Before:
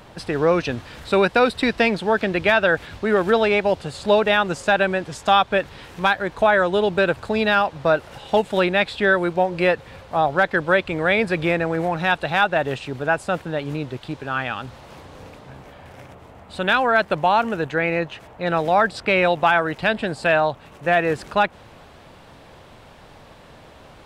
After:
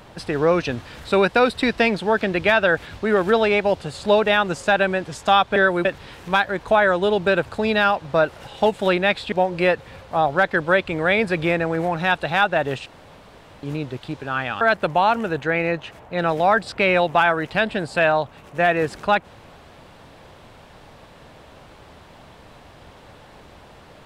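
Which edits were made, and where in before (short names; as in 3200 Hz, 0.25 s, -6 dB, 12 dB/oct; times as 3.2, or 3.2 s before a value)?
9.03–9.32 move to 5.56
12.86–13.63 room tone
14.61–16.89 cut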